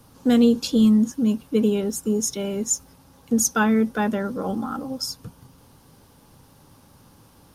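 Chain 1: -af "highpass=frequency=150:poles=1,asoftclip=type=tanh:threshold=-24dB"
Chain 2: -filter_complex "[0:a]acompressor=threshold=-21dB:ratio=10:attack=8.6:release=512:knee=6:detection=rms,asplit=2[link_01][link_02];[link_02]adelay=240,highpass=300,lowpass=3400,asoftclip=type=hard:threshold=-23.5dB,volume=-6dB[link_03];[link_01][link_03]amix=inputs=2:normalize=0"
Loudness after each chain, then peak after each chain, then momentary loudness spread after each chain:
−29.0, −28.0 LKFS; −24.0, −15.0 dBFS; 5, 6 LU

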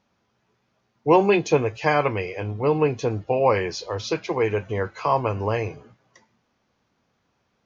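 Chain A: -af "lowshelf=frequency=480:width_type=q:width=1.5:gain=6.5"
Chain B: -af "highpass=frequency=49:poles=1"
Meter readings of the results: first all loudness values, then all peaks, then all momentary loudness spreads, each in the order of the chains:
−18.5, −23.0 LKFS; −1.5, −6.0 dBFS; 10, 10 LU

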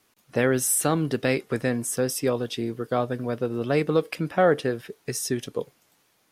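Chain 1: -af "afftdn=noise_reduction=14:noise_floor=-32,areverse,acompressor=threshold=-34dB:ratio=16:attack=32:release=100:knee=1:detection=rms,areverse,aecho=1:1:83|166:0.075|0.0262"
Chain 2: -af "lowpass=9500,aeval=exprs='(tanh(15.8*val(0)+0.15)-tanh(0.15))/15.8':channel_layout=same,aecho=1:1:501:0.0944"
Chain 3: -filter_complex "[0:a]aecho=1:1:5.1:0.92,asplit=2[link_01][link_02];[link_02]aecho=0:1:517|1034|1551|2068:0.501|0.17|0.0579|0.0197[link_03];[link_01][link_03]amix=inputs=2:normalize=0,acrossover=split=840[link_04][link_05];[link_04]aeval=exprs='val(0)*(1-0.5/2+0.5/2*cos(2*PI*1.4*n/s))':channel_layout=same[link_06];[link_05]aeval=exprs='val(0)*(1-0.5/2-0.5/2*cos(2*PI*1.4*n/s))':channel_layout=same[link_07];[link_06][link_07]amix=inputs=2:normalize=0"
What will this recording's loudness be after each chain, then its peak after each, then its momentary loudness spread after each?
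−37.0, −31.0, −25.0 LKFS; −20.5, −22.0, −7.5 dBFS; 5, 7, 9 LU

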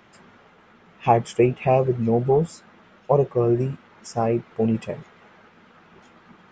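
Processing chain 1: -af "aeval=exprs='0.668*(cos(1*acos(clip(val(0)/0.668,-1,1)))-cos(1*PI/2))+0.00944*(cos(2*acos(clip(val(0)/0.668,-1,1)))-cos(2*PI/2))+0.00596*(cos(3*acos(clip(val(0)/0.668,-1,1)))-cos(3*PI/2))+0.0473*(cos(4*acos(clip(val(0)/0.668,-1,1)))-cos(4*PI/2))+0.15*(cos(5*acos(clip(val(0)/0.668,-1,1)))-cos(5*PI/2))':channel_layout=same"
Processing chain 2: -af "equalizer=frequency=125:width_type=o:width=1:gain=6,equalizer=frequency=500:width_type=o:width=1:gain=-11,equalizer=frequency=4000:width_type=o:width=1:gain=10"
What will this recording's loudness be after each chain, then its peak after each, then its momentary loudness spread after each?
−18.0, −23.5 LKFS; −4.0, −7.5 dBFS; 10, 12 LU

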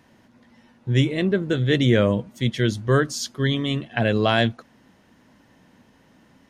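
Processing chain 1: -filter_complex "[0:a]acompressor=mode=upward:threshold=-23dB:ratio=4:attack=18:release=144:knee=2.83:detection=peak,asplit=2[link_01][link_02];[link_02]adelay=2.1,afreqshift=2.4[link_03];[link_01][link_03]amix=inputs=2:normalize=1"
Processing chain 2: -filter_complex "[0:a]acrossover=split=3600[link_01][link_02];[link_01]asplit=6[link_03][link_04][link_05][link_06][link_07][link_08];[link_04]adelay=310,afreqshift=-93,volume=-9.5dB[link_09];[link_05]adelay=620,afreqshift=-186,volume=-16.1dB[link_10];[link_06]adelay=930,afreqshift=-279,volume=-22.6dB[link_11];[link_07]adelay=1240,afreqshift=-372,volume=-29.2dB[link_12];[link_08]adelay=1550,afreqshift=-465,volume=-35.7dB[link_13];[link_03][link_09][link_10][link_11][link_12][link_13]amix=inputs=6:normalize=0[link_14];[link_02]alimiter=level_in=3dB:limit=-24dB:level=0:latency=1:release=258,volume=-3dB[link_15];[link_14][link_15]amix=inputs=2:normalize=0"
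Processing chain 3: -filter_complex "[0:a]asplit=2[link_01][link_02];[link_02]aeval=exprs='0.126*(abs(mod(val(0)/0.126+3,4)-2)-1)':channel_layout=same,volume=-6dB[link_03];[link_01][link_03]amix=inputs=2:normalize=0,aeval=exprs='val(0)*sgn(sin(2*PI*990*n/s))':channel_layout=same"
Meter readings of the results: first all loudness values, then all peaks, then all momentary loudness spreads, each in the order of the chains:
−25.5, −22.0, −18.5 LKFS; −2.5, −5.0, −5.5 dBFS; 14, 13, 6 LU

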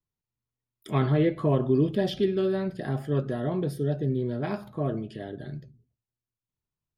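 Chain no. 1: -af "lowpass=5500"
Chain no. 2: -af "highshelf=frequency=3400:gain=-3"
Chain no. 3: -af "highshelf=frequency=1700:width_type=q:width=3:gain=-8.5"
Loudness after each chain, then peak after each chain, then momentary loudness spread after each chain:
−27.5, −27.5, −27.0 LKFS; −13.0, −13.0, −11.0 dBFS; 14, 14, 14 LU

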